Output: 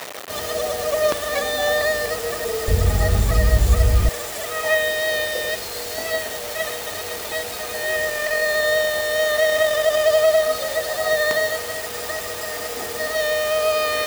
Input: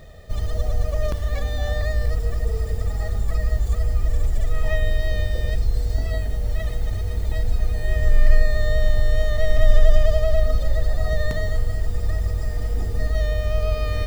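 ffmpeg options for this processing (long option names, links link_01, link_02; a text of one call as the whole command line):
ffmpeg -i in.wav -af "acontrast=20,acrusher=bits=5:mix=0:aa=0.000001,asetnsamples=nb_out_samples=441:pad=0,asendcmd='2.68 highpass f 73;4.09 highpass f 540',highpass=400,volume=7dB" out.wav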